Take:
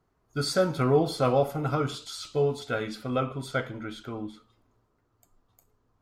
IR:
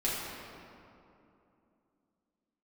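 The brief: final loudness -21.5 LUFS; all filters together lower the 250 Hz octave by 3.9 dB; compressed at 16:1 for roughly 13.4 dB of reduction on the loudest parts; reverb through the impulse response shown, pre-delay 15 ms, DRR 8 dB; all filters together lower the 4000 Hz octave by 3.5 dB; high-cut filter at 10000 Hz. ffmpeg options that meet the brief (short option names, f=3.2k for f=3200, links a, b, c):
-filter_complex "[0:a]lowpass=10k,equalizer=f=250:t=o:g=-5.5,equalizer=f=4k:t=o:g=-4,acompressor=threshold=-32dB:ratio=16,asplit=2[a][b];[1:a]atrim=start_sample=2205,adelay=15[c];[b][c]afir=irnorm=-1:irlink=0,volume=-16dB[d];[a][d]amix=inputs=2:normalize=0,volume=16.5dB"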